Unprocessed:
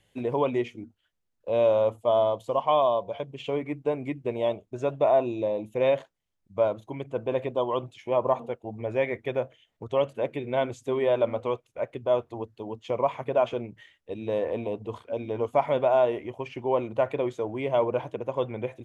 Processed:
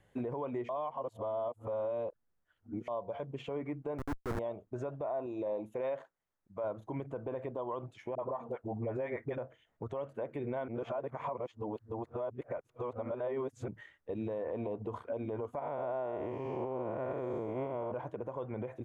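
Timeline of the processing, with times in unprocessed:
0:00.69–0:02.88: reverse
0:03.98–0:04.39: comparator with hysteresis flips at −33.5 dBFS
0:05.26–0:06.64: low-shelf EQ 230 Hz −10.5 dB
0:08.15–0:09.38: all-pass dispersion highs, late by 42 ms, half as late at 450 Hz
0:10.68–0:13.68: reverse
0:15.59–0:17.92: spectrum smeared in time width 270 ms
whole clip: high shelf with overshoot 2,100 Hz −9 dB, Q 1.5; downward compressor 6 to 1, threshold −31 dBFS; brickwall limiter −29.5 dBFS; level +1 dB

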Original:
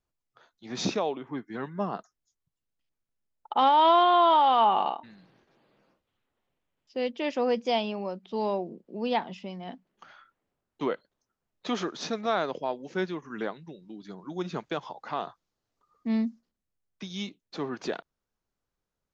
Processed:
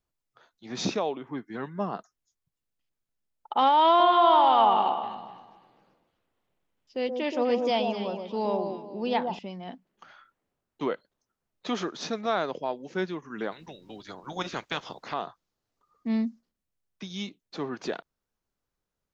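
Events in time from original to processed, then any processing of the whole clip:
0:03.87–0:09.39: delay that swaps between a low-pass and a high-pass 126 ms, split 1,000 Hz, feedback 52%, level −4 dB
0:13.51–0:15.12: ceiling on every frequency bin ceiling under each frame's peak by 19 dB

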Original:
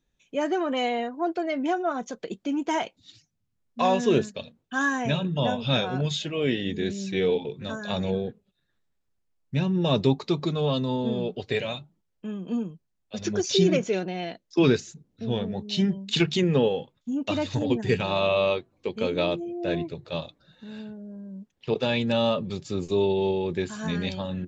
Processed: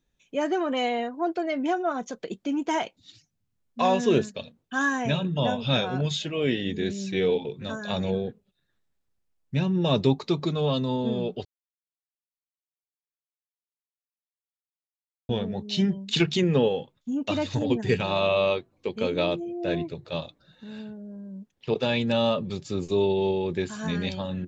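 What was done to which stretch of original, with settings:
0:11.45–0:15.29: silence

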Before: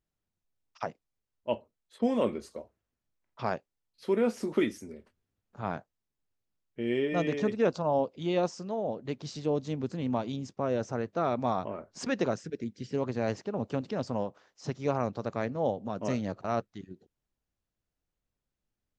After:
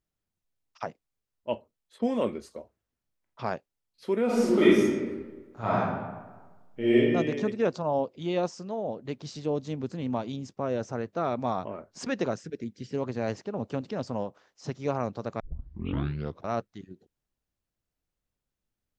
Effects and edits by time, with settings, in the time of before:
0:04.25–0:06.96: thrown reverb, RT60 1.3 s, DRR −9 dB
0:15.40: tape start 1.11 s

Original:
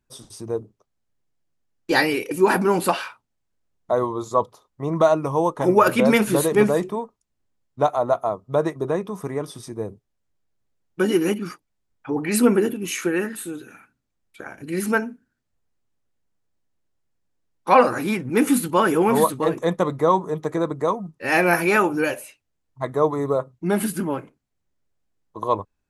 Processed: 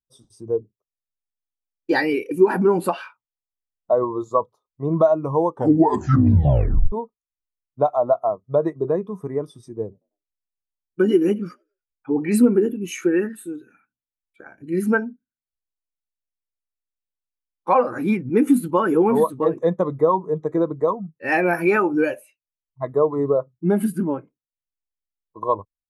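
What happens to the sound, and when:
0:05.49: tape stop 1.43 s
0:09.82–0:12.50: echo with shifted repeats 96 ms, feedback 50%, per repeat +69 Hz, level −23.5 dB
whole clip: downward compressor 6 to 1, threshold −17 dBFS; every bin expanded away from the loudest bin 1.5 to 1; level +3 dB

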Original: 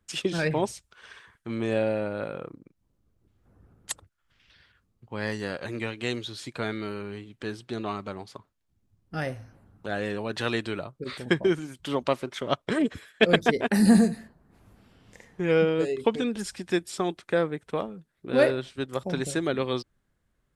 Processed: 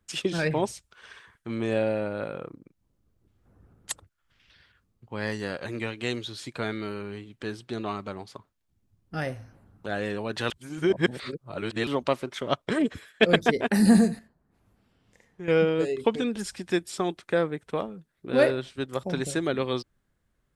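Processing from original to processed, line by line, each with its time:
0:10.50–0:11.87: reverse
0:14.19–0:15.48: clip gain −9.5 dB

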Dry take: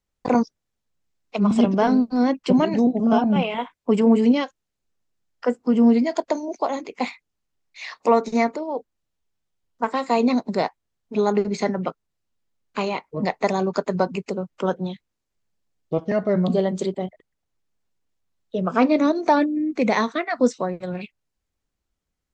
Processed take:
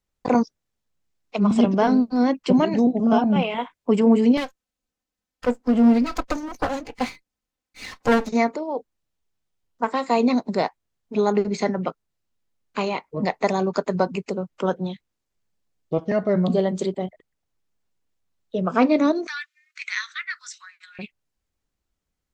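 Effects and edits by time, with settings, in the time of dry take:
0:04.37–0:08.29: lower of the sound and its delayed copy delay 3.9 ms
0:19.27–0:20.99: Butterworth high-pass 1,400 Hz 48 dB per octave

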